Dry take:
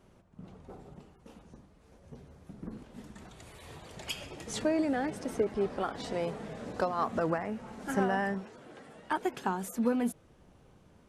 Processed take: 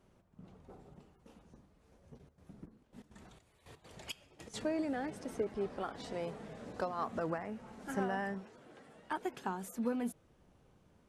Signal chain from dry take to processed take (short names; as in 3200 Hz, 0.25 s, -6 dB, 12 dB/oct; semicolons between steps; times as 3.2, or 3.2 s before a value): 2.17–4.53 step gate "x.xxx..." 164 bpm -12 dB; gain -6.5 dB